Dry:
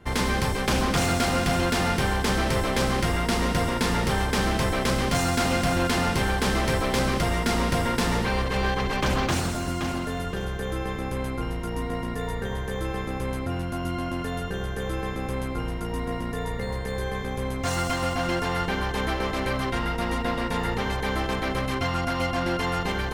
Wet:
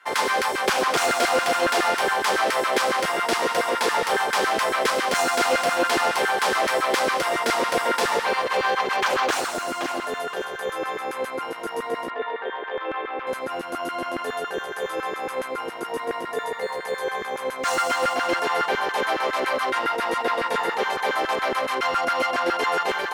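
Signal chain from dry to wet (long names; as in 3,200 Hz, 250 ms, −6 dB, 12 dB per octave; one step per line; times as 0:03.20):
harmonic generator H 6 −40 dB, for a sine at −16 dBFS
0:12.10–0:13.27: elliptic band-pass filter 270–3,200 Hz, stop band 50 dB
auto-filter high-pass saw down 7.2 Hz 360–1,600 Hz
level +2 dB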